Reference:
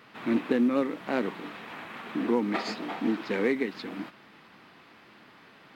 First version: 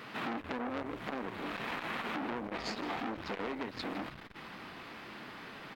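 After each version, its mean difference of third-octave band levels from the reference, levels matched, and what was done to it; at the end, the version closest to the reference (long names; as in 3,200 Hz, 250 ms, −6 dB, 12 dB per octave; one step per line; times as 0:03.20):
9.5 dB: downward compressor 8 to 1, threshold −37 dBFS, peak gain reduction 16.5 dB
on a send: echo with shifted repeats 157 ms, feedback 37%, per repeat −150 Hz, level −16 dB
on the sum: saturating transformer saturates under 2,400 Hz
level +7 dB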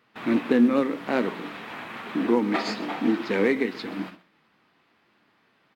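3.5 dB: noise gate −46 dBFS, range −15 dB
flanger 0.54 Hz, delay 8.1 ms, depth 6.6 ms, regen +79%
on a send: single-tap delay 129 ms −19.5 dB
on the sum: level +8.5 dB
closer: second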